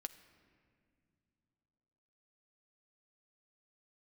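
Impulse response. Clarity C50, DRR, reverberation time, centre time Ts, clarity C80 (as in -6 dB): 13.5 dB, 8.5 dB, no single decay rate, 10 ms, 14.5 dB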